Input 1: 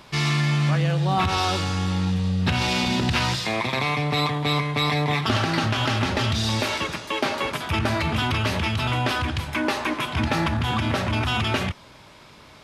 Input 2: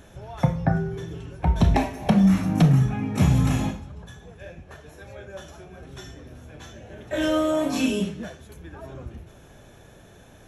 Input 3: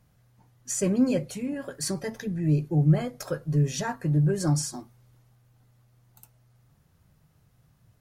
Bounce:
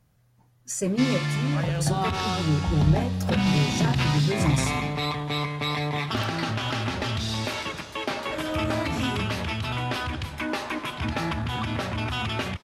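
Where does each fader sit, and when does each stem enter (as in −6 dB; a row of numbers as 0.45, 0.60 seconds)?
−5.0, −8.0, −1.0 decibels; 0.85, 1.20, 0.00 seconds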